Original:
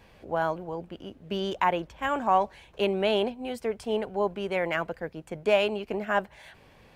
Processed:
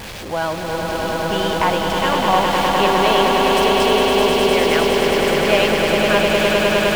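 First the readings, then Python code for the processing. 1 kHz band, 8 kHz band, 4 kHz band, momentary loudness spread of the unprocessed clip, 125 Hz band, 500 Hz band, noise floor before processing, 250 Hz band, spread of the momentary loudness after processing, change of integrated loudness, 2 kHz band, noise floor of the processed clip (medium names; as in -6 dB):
+12.0 dB, no reading, +18.0 dB, 13 LU, +14.0 dB, +12.0 dB, -56 dBFS, +13.0 dB, 8 LU, +12.5 dB, +14.5 dB, -27 dBFS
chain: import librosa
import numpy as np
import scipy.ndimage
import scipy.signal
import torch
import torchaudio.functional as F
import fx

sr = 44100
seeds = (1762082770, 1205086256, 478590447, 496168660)

y = x + 0.5 * 10.0 ** (-31.0 / 20.0) * np.sign(x)
y = fx.dynamic_eq(y, sr, hz=3900.0, q=0.81, threshold_db=-44.0, ratio=4.0, max_db=6)
y = fx.echo_swell(y, sr, ms=102, loudest=8, wet_db=-5)
y = F.gain(torch.from_numpy(y), 3.0).numpy()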